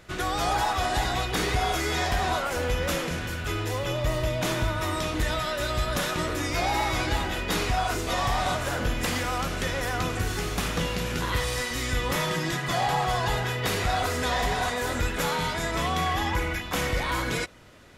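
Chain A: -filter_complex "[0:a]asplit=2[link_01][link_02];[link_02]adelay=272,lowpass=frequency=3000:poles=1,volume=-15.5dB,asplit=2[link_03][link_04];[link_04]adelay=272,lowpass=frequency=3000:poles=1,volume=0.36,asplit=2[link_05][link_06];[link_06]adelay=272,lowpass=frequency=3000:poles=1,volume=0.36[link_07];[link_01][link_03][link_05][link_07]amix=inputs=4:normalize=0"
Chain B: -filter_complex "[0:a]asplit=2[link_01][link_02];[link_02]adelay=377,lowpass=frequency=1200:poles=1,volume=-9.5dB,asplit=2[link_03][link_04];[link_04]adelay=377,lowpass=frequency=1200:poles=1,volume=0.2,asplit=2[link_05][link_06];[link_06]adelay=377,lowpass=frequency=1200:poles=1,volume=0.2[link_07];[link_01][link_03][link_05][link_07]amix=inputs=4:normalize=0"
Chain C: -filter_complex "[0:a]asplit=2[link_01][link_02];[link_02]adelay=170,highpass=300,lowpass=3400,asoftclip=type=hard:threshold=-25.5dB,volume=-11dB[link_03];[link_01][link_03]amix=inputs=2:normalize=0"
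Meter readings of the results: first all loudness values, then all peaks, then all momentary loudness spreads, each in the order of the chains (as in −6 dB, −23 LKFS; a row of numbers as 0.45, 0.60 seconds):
−27.0, −27.0, −27.0 LKFS; −15.5, −14.5, −15.5 dBFS; 3, 3, 3 LU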